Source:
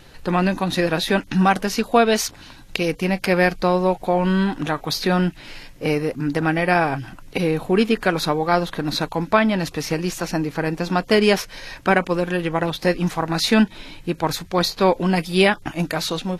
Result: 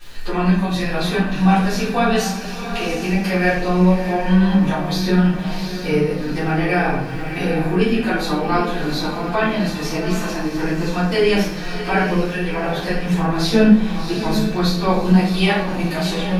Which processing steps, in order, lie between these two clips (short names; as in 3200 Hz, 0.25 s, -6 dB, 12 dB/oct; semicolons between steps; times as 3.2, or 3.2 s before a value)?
chorus voices 4, 0.82 Hz, delay 14 ms, depth 2.5 ms; crackle 160/s -41 dBFS; on a send: diffused feedback echo 0.726 s, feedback 43%, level -9.5 dB; on the sum: shoebox room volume 100 m³, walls mixed, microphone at 3.6 m; mismatched tape noise reduction encoder only; gain -11 dB